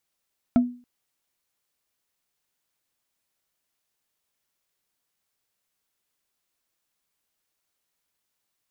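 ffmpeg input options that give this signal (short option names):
-f lavfi -i "aevalsrc='0.266*pow(10,-3*t/0.38)*sin(2*PI*245*t)+0.0891*pow(10,-3*t/0.113)*sin(2*PI*675.5*t)+0.0299*pow(10,-3*t/0.05)*sin(2*PI*1324*t)+0.01*pow(10,-3*t/0.027)*sin(2*PI*2188.6*t)+0.00335*pow(10,-3*t/0.017)*sin(2*PI*3268.3*t)':d=0.28:s=44100"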